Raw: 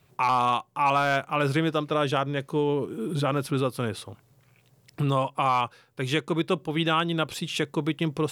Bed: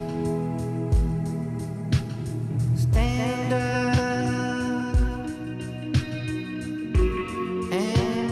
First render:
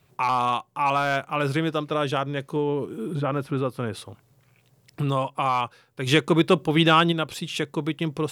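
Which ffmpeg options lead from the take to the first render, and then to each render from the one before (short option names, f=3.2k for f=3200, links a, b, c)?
-filter_complex "[0:a]asettb=1/sr,asplit=3[a][b][c];[a]atrim=end=2.564[d];[b]atrim=start=2.56:end=3.93,asetpts=PTS-STARTPTS,afade=t=in:d=0.004:c=qsin,afade=t=out:st=1.366:d=0.004:c=qsin,acrossover=split=2500[e][f];[f]acompressor=threshold=-50dB:ratio=4:attack=1:release=60[g];[e][g]amix=inputs=2:normalize=0[h];[c]atrim=start=3.926[i];[d][h]acrossfade=d=0.004:c1=hsin:c2=qsin[j];[j][i]acrossfade=d=0.004:c1=qsin:c2=hsin,asplit=3[k][l][m];[k]afade=t=out:st=6.06:d=0.02[n];[l]acontrast=80,afade=t=in:st=6.06:d=0.02,afade=t=out:st=7.11:d=0.02[o];[m]afade=t=in:st=7.11:d=0.02[p];[n][o][p]amix=inputs=3:normalize=0"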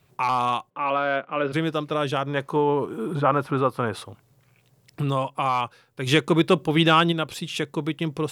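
-filter_complex "[0:a]asplit=3[a][b][c];[a]afade=t=out:st=0.69:d=0.02[d];[b]highpass=f=180:w=0.5412,highpass=f=180:w=1.3066,equalizer=f=530:t=q:w=4:g=5,equalizer=f=840:t=q:w=4:g=-7,equalizer=f=2.4k:t=q:w=4:g=-3,lowpass=f=3.2k:w=0.5412,lowpass=f=3.2k:w=1.3066,afade=t=in:st=0.69:d=0.02,afade=t=out:st=1.52:d=0.02[e];[c]afade=t=in:st=1.52:d=0.02[f];[d][e][f]amix=inputs=3:normalize=0,asettb=1/sr,asplit=3[g][h][i];[g]atrim=end=2.274[j];[h]atrim=start=2.27:end=4.05,asetpts=PTS-STARTPTS,afade=t=in:d=0.004:c=qsin,afade=t=out:st=1.776:d=0.004:c=qsin,equalizer=f=1k:t=o:w=1.6:g=10.5[k];[i]atrim=start=4.046[l];[j][k]acrossfade=d=0.004:c1=hsin:c2=qsin[m];[m][l]acrossfade=d=0.004:c1=qsin:c2=hsin"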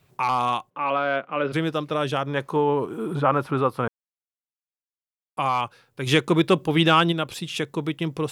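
-filter_complex "[0:a]asplit=3[a][b][c];[a]atrim=end=3.88,asetpts=PTS-STARTPTS,afade=t=out:st=3.876:d=0.004:c=hsin[d];[b]atrim=start=3.88:end=5.37,asetpts=PTS-STARTPTS,volume=0[e];[c]atrim=start=5.37,asetpts=PTS-STARTPTS,afade=t=in:d=0.004:c=hsin[f];[d][e][f]concat=n=3:v=0:a=1"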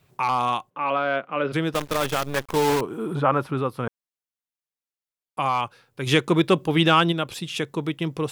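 -filter_complex "[0:a]asettb=1/sr,asplit=3[a][b][c];[a]atrim=end=1.744[d];[b]atrim=start=1.74:end=2.81,asetpts=PTS-STARTPTS,afade=t=in:d=0.004:c=qsin,afade=t=out:st=1.066:d=0.004:c=qsin,acrusher=bits=5:dc=4:mix=0:aa=0.000001[e];[c]atrim=start=2.806[f];[d][e]acrossfade=d=0.004:c1=hsin:c2=qsin[g];[g][f]acrossfade=d=0.004:c1=qsin:c2=hsin,asettb=1/sr,asplit=3[h][i][j];[h]atrim=end=3.474[k];[i]atrim=start=3.47:end=3.87,asetpts=PTS-STARTPTS,afade=t=in:d=0.004:c=qsin,afade=t=out:st=0.396:d=0.004:c=qsin,equalizer=f=920:t=o:w=2.3:g=-6[l];[j]atrim=start=3.866[m];[k][l]acrossfade=d=0.004:c1=hsin:c2=qsin[n];[n][m]acrossfade=d=0.004:c1=qsin:c2=hsin"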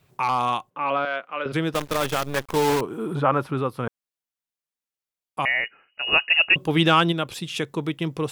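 -filter_complex "[0:a]asettb=1/sr,asplit=3[a][b][c];[a]atrim=end=1.054[d];[b]atrim=start=1.05:end=1.46,asetpts=PTS-STARTPTS,afade=t=in:d=0.004:c=qsin,afade=t=out:st=0.406:d=0.004:c=qsin,highpass=f=920:p=1[e];[c]atrim=start=1.456[f];[d][e]acrossfade=d=0.004:c1=hsin:c2=qsin[g];[g][f]acrossfade=d=0.004:c1=qsin:c2=hsin,asettb=1/sr,asplit=3[h][i][j];[h]atrim=end=5.454[k];[i]atrim=start=5.45:end=6.56,asetpts=PTS-STARTPTS,afade=t=in:d=0.004:c=qsin,afade=t=out:st=1.106:d=0.004:c=qsin,lowpass=f=2.6k:t=q:w=0.5098,lowpass=f=2.6k:t=q:w=0.6013,lowpass=f=2.6k:t=q:w=0.9,lowpass=f=2.6k:t=q:w=2.563,afreqshift=-3000[l];[j]atrim=start=6.556[m];[k][l]acrossfade=d=0.004:c1=hsin:c2=qsin[n];[n][m]acrossfade=d=0.004:c1=qsin:c2=hsin"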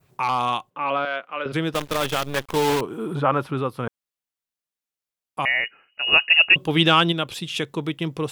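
-af "adynamicequalizer=threshold=0.0178:dfrequency=3200:dqfactor=1.9:tfrequency=3200:tqfactor=1.9:attack=5:release=100:ratio=0.375:range=2.5:mode=boostabove:tftype=bell"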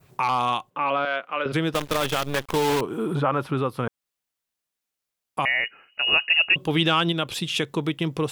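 -filter_complex "[0:a]asplit=2[a][b];[b]alimiter=limit=-14.5dB:level=0:latency=1:release=55,volume=-2dB[c];[a][c]amix=inputs=2:normalize=0,acompressor=threshold=-28dB:ratio=1.5"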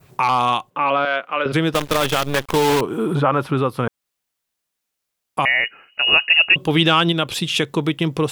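-af "volume=5.5dB"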